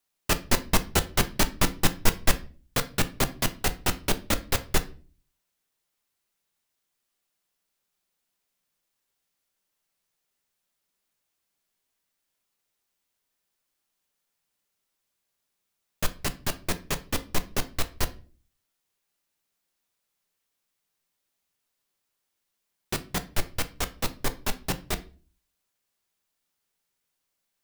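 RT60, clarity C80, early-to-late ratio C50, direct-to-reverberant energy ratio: 0.40 s, 23.0 dB, 17.0 dB, 9.0 dB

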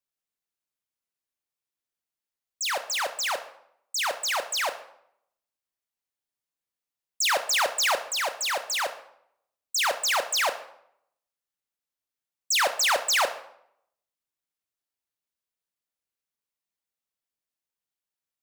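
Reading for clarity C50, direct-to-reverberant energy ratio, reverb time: 12.0 dB, 8.5 dB, 0.70 s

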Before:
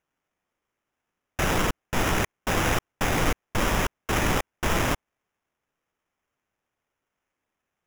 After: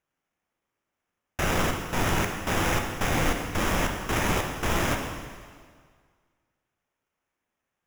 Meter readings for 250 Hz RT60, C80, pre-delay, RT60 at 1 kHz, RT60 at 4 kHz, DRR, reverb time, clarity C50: 1.7 s, 6.0 dB, 6 ms, 1.8 s, 1.7 s, 3.0 dB, 1.8 s, 4.5 dB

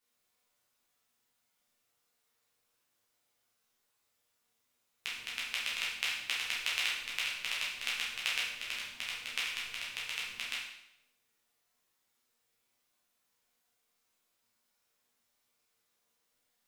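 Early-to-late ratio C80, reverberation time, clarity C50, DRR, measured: 5.5 dB, 0.80 s, 1.5 dB, −7.0 dB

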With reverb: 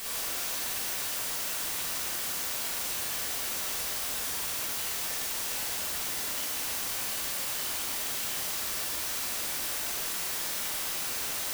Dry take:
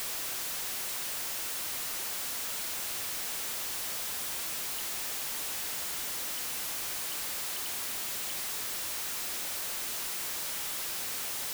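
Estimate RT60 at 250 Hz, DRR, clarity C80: 1.8 s, −6.5 dB, 2.0 dB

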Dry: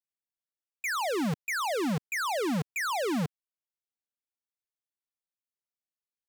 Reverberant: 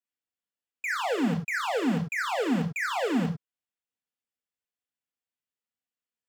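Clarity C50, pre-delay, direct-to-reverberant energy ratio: 12.0 dB, 3 ms, 3.0 dB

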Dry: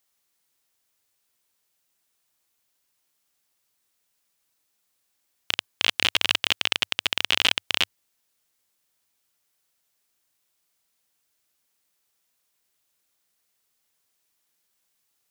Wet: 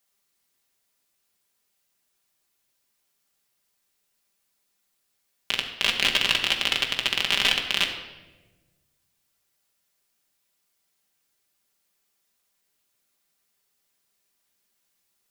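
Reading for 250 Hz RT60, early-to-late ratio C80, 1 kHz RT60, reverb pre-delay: 1.6 s, 9.0 dB, 0.95 s, 5 ms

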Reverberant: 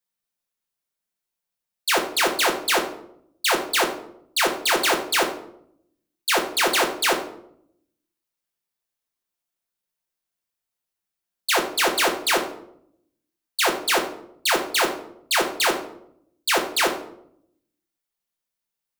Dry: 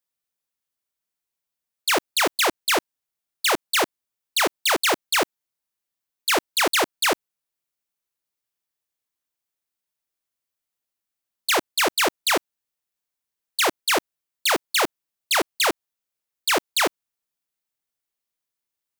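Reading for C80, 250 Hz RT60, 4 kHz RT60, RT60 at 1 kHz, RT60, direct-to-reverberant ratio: 13.0 dB, 1.0 s, 0.45 s, 0.65 s, 0.70 s, 1.0 dB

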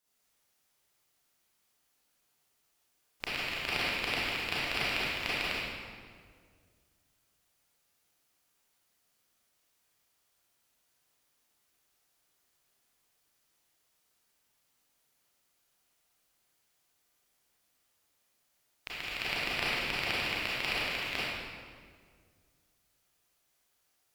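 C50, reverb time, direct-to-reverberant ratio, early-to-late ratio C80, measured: −4.5 dB, 1.9 s, −9.0 dB, −1.5 dB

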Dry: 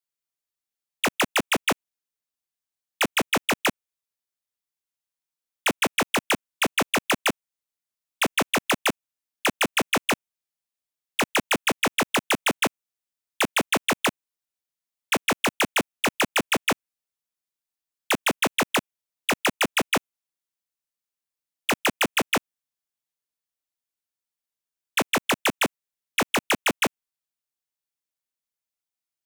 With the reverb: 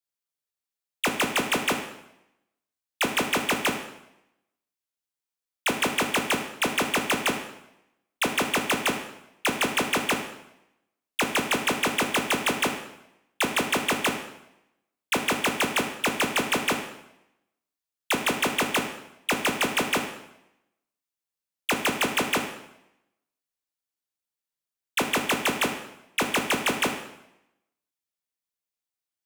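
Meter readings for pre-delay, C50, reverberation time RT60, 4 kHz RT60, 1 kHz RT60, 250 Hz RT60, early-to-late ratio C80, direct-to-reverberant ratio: 14 ms, 7.5 dB, 0.85 s, 0.75 s, 0.85 s, 0.90 s, 10.0 dB, 4.5 dB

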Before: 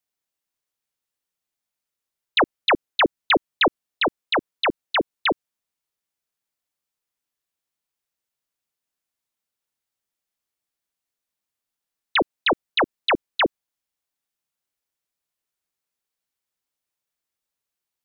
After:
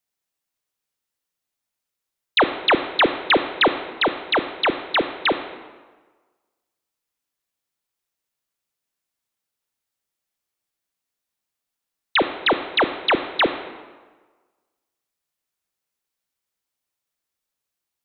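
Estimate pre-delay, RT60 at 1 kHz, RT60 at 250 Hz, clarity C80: 24 ms, 1.4 s, 1.3 s, 12.0 dB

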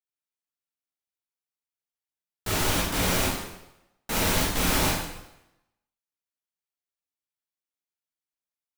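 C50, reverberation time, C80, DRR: 1.5 dB, 0.90 s, 4.5 dB, −5.5 dB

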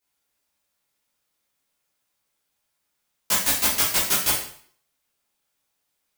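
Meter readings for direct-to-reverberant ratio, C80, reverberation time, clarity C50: −8.5 dB, 8.5 dB, 0.55 s, 4.5 dB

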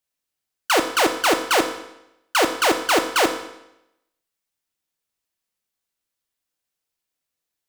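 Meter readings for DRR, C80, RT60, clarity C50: 5.0 dB, 11.0 dB, 0.85 s, 9.0 dB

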